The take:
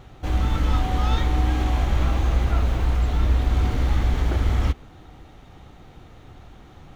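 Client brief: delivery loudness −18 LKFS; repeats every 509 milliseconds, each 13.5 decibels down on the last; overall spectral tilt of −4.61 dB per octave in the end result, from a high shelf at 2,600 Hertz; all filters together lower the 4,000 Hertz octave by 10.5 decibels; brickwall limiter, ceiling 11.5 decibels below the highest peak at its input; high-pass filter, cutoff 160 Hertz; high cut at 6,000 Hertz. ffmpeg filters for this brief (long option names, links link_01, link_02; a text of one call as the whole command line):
ffmpeg -i in.wav -af "highpass=160,lowpass=6000,highshelf=frequency=2600:gain=-7.5,equalizer=frequency=4000:width_type=o:gain=-7,alimiter=level_in=4.5dB:limit=-24dB:level=0:latency=1,volume=-4.5dB,aecho=1:1:509|1018:0.211|0.0444,volume=19.5dB" out.wav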